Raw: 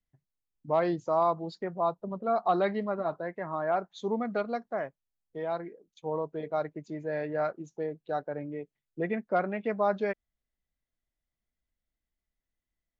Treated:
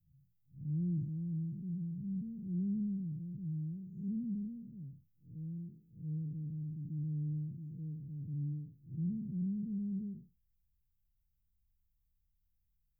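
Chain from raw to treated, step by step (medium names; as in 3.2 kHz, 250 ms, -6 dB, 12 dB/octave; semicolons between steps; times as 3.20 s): spectral blur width 182 ms; inverse Chebyshev band-stop 630–4800 Hz, stop band 70 dB; trim +11.5 dB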